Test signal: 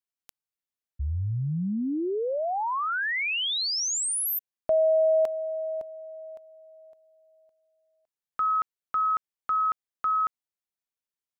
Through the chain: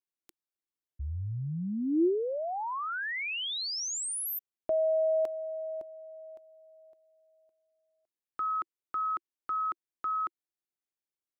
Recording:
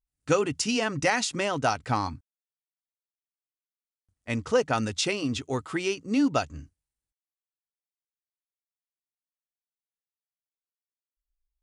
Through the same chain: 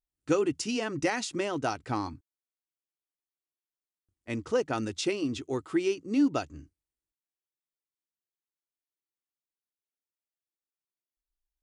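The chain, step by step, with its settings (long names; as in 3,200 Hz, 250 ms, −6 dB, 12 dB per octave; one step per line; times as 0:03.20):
parametric band 340 Hz +11.5 dB 0.52 octaves
level −6.5 dB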